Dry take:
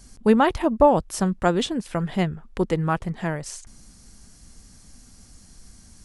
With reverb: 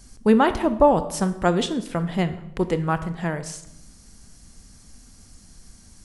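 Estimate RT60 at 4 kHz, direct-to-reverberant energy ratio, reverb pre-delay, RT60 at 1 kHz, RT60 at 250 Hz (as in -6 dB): 0.60 s, 11.0 dB, 22 ms, 0.75 s, 1.0 s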